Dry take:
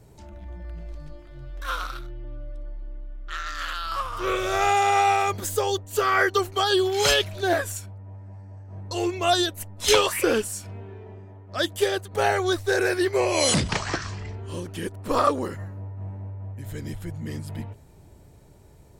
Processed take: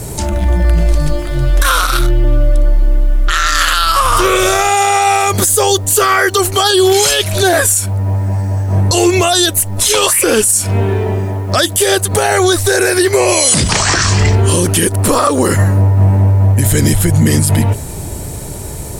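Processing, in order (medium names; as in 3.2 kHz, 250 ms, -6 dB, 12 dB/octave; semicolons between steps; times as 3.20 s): peaking EQ 9.8 kHz +14 dB 1.2 oct; compression 6:1, threshold -30 dBFS, peak gain reduction 18 dB; word length cut 12-bit, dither none; loudness maximiser +27.5 dB; trim -1 dB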